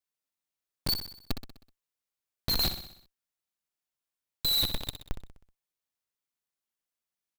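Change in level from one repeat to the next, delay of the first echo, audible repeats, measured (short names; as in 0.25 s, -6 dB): -5.5 dB, 63 ms, 5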